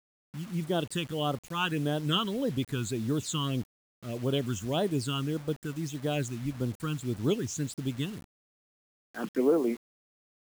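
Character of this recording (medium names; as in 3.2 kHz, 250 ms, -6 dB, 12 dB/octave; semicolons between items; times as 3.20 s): phasing stages 8, 1.7 Hz, lowest notch 580–2500 Hz; a quantiser's noise floor 8-bit, dither none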